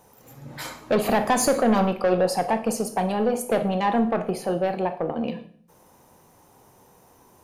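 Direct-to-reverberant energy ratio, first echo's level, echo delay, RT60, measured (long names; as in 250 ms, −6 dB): 8.0 dB, no echo audible, no echo audible, 0.55 s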